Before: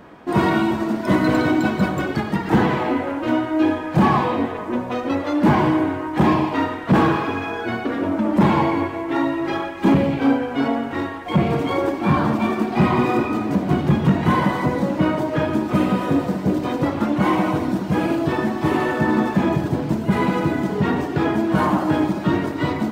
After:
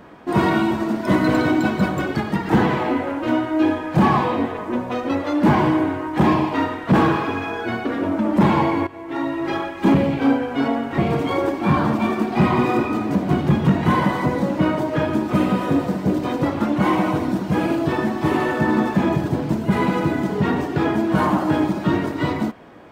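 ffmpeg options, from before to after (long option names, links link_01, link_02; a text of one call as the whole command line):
ffmpeg -i in.wav -filter_complex "[0:a]asplit=3[link_01][link_02][link_03];[link_01]atrim=end=8.87,asetpts=PTS-STARTPTS,afade=type=out:start_time=8.866:duration=0.004:curve=hsin:silence=0.223872[link_04];[link_02]atrim=start=8.87:end=10.982,asetpts=PTS-STARTPTS,afade=type=in:duration=0.63:silence=0.223872[link_05];[link_03]atrim=start=11.378[link_06];[link_04][link_05]concat=n=2:v=0:a=1[link_07];[link_07][link_06]acrossfade=duration=0.004:curve1=hsin:curve2=hsin" out.wav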